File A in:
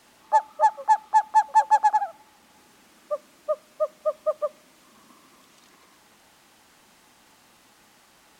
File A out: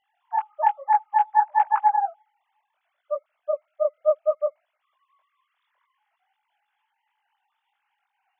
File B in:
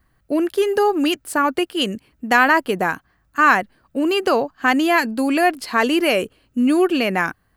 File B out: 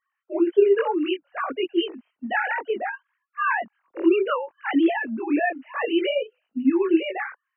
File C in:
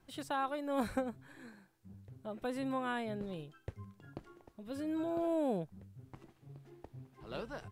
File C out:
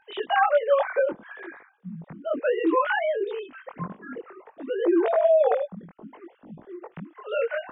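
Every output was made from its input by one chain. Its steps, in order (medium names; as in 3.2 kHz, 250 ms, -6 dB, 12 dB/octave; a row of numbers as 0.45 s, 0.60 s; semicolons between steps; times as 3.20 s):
formants replaced by sine waves; chorus voices 2, 0.62 Hz, delay 21 ms, depth 3.4 ms; normalise loudness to -24 LUFS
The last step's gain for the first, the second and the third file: +3.0 dB, -1.5 dB, +17.0 dB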